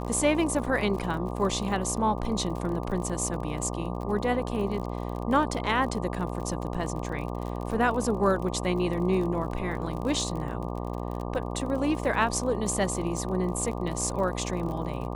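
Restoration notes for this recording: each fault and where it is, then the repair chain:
buzz 60 Hz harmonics 20 -33 dBFS
crackle 39 per s -34 dBFS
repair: de-click; de-hum 60 Hz, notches 20

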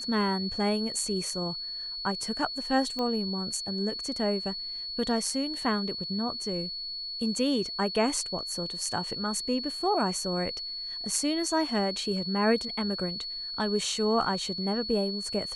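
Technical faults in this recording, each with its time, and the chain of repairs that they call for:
whine 4.4 kHz -34 dBFS
2.99 s: pop -20 dBFS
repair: de-click; band-stop 4.4 kHz, Q 30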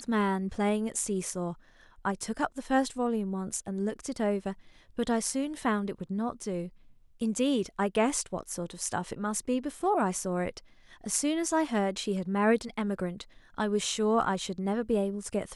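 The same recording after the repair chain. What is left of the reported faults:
nothing left

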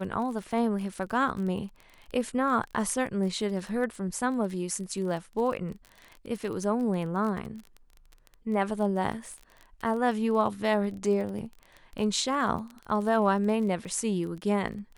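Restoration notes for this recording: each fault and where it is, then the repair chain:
crackle 24 per s -35 dBFS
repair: de-click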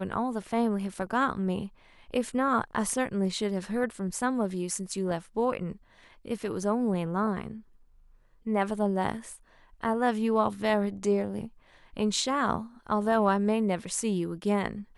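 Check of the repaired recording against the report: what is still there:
nothing left

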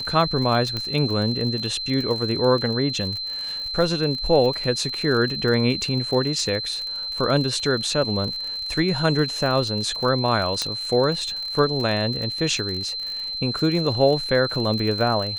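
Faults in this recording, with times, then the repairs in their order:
crackle 49 per s -28 dBFS
whine 4.1 kHz -27 dBFS
0.77 s: pop -14 dBFS
10.62 s: pop -9 dBFS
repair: de-click; band-stop 4.1 kHz, Q 30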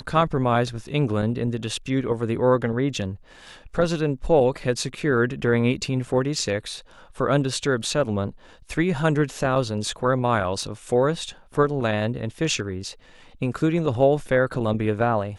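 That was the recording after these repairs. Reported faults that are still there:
0.77 s: pop
10.62 s: pop

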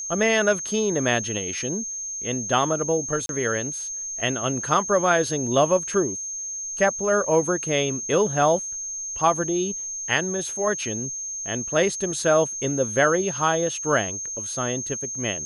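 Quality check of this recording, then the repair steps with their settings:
whine 6.4 kHz -29 dBFS
3.26–3.29 s: dropout 32 ms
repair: band-stop 6.4 kHz, Q 30; interpolate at 3.26 s, 32 ms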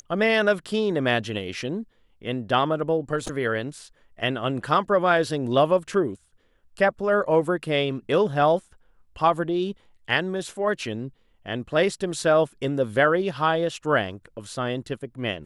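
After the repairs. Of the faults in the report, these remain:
nothing left

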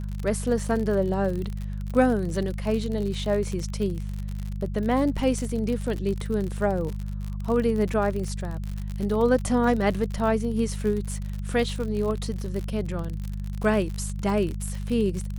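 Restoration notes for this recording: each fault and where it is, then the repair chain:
crackle 54 per s -29 dBFS
hum 50 Hz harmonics 4 -31 dBFS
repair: de-click; de-hum 50 Hz, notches 4

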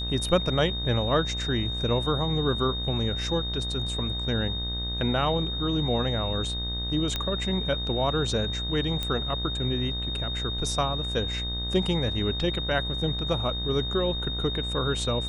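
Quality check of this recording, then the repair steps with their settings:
buzz 60 Hz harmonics 34 -33 dBFS
whine 3.7 kHz -31 dBFS
7.16 s: pop -13 dBFS
9.03 s: pop -15 dBFS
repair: de-click; de-hum 60 Hz, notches 34; band-stop 3.7 kHz, Q 30

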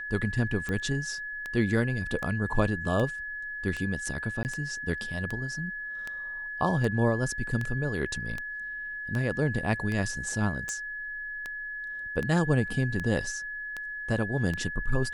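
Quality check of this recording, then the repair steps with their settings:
tick 78 rpm -20 dBFS
whine 1.7 kHz -34 dBFS
4.43–4.45 s: dropout 19 ms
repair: de-click; band-stop 1.7 kHz, Q 30; interpolate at 4.43 s, 19 ms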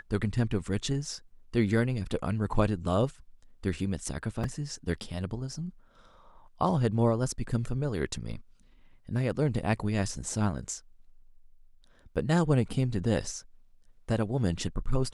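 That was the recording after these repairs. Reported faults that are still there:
nothing left

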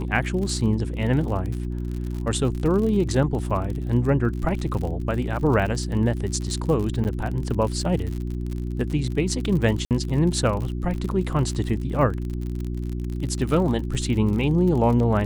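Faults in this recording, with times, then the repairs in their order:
crackle 50 per s -29 dBFS
hum 60 Hz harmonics 6 -28 dBFS
7.04–7.05 s: dropout 9.6 ms
9.85–9.91 s: dropout 58 ms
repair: de-click; de-hum 60 Hz, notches 6; interpolate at 7.04 s, 9.6 ms; interpolate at 9.85 s, 58 ms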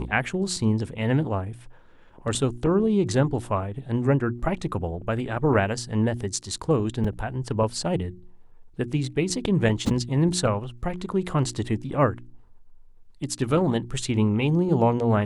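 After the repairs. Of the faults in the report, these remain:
nothing left

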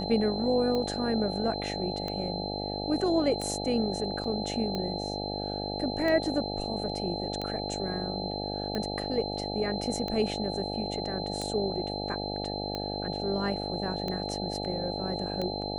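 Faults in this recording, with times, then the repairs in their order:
buzz 50 Hz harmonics 17 -35 dBFS
tick 45 rpm -20 dBFS
whine 4.1 kHz -37 dBFS
4.24 s: dropout 3.5 ms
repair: de-click; band-stop 4.1 kHz, Q 30; de-hum 50 Hz, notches 17; interpolate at 4.24 s, 3.5 ms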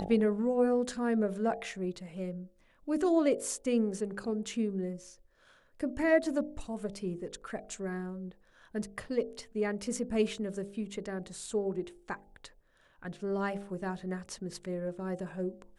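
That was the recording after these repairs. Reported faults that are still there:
nothing left

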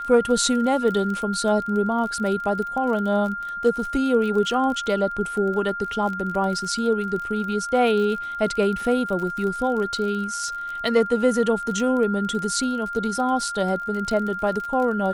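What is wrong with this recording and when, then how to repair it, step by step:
crackle 35 per s -29 dBFS
whine 1.4 kHz -28 dBFS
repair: de-click; band-stop 1.4 kHz, Q 30

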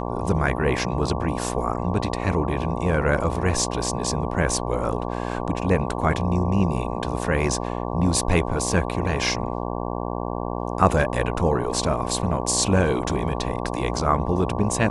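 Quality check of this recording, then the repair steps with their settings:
buzz 60 Hz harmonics 19 -28 dBFS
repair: de-hum 60 Hz, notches 19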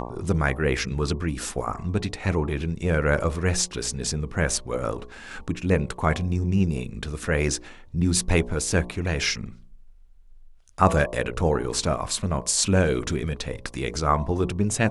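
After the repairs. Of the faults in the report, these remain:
nothing left

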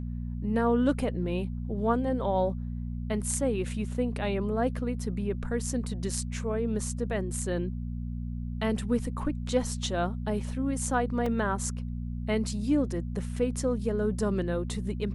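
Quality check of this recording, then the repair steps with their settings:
hum 60 Hz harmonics 4 -34 dBFS
11.26 s: dropout 3.6 ms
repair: de-hum 60 Hz, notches 4; interpolate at 11.26 s, 3.6 ms

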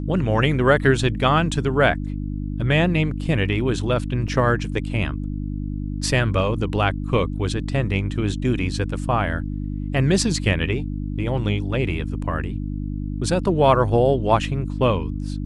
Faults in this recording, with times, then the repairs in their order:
hum 50 Hz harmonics 6 -27 dBFS
4.28 s: dropout 3.9 ms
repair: de-hum 50 Hz, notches 6; interpolate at 4.28 s, 3.9 ms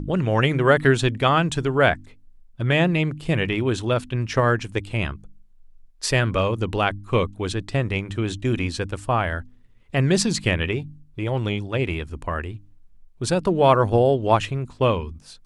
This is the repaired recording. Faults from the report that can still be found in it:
nothing left

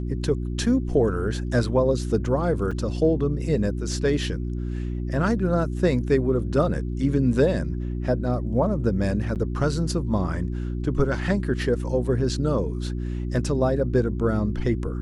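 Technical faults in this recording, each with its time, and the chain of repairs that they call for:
hum 60 Hz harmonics 6 -28 dBFS
2.71–2.72 s: dropout 5.3 ms
9.35–9.36 s: dropout 8.3 ms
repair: de-hum 60 Hz, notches 6; interpolate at 2.71 s, 5.3 ms; interpolate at 9.35 s, 8.3 ms

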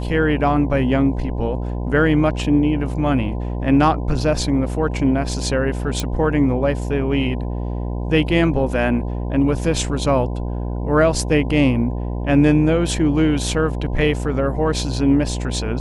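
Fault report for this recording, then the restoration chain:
buzz 60 Hz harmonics 17 -24 dBFS
6.00 s: pop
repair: de-click; de-hum 60 Hz, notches 17

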